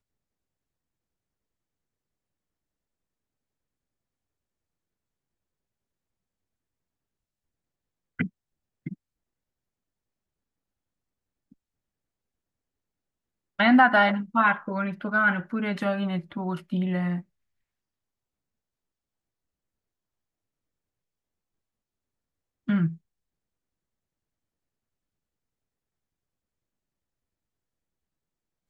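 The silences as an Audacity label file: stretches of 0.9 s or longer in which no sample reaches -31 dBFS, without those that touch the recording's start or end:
8.930000	13.590000	silence
17.190000	22.690000	silence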